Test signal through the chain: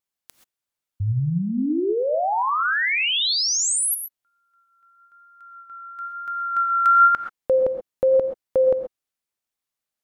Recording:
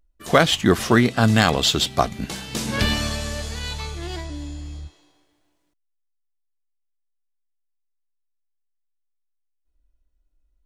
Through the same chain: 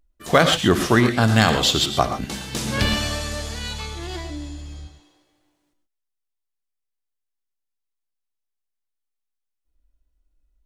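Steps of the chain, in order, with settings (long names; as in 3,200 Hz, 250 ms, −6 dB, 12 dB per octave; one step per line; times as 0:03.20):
pitch vibrato 1 Hz 13 cents
reverb whose tail is shaped and stops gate 150 ms rising, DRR 7.5 dB
dynamic equaliser 220 Hz, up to −3 dB, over −34 dBFS, Q 4.2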